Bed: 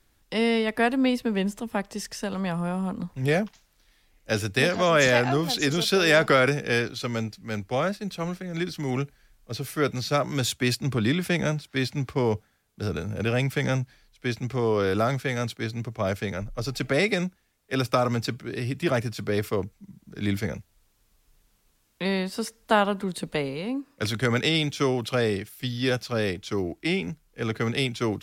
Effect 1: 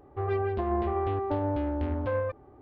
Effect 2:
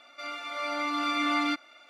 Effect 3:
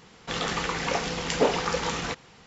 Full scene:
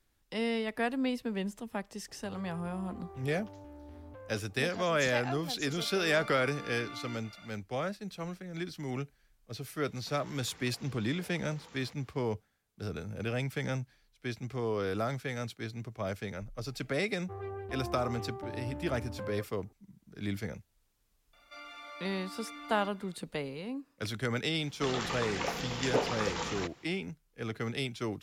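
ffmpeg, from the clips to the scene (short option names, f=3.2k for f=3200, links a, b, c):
-filter_complex "[1:a]asplit=2[a][b];[2:a]asplit=2[c][d];[3:a]asplit=2[e][f];[0:a]volume=-9dB[g];[a]acompressor=threshold=-39dB:ratio=6:attack=3.2:release=140:knee=1:detection=peak[h];[c]acompressor=threshold=-43dB:ratio=6:attack=3.2:release=140:knee=1:detection=peak[i];[e]acompressor=threshold=-37dB:ratio=6:attack=3.2:release=140:knee=1:detection=peak[j];[d]acompressor=threshold=-34dB:ratio=6:attack=3.2:release=140:knee=1:detection=peak[k];[h]atrim=end=2.61,asetpts=PTS-STARTPTS,volume=-7.5dB,afade=t=in:d=0.004:c=hsin,afade=t=out:st=2.606:d=0.004:c=hsin,adelay=2080[l];[i]atrim=end=1.89,asetpts=PTS-STARTPTS,afade=t=in:d=0.004:c=hsin,afade=t=out:st=1.886:d=0.004:c=hsin,adelay=5620[m];[j]atrim=end=2.46,asetpts=PTS-STARTPTS,volume=-14.5dB,afade=t=in:d=0.004:c=hsin,afade=t=out:st=2.456:d=0.004:c=hsin,adelay=9790[n];[b]atrim=end=2.61,asetpts=PTS-STARTPTS,volume=-12dB,afade=t=in:d=0.004:c=hsin,afade=t=out:st=2.606:d=0.004:c=hsin,adelay=17120[o];[k]atrim=end=1.89,asetpts=PTS-STARTPTS,volume=-9dB,afade=t=in:d=0.004:c=hsin,afade=t=out:st=1.886:d=0.004:c=hsin,adelay=21330[p];[f]atrim=end=2.46,asetpts=PTS-STARTPTS,volume=-7dB,afade=t=in:d=0.004:c=hsin,afade=t=out:st=2.456:d=0.004:c=hsin,adelay=24530[q];[g][l][m][n][o][p][q]amix=inputs=7:normalize=0"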